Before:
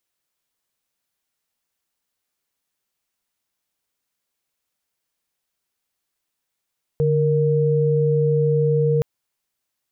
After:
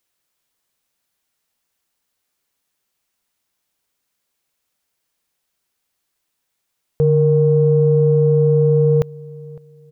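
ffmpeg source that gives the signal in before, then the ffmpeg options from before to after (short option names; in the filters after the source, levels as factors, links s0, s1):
-f lavfi -i "aevalsrc='0.126*(sin(2*PI*146.83*t)+sin(2*PI*466.16*t))':d=2.02:s=44100"
-filter_complex "[0:a]acontrast=26,asplit=2[s0][s1];[s1]adelay=557,lowpass=f=810:p=1,volume=0.0891,asplit=2[s2][s3];[s3]adelay=557,lowpass=f=810:p=1,volume=0.33[s4];[s0][s2][s4]amix=inputs=3:normalize=0"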